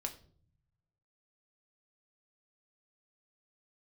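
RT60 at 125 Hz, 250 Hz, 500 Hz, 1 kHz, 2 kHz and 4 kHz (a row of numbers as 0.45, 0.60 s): 1.5, 1.0, 0.60, 0.40, 0.35, 0.35 s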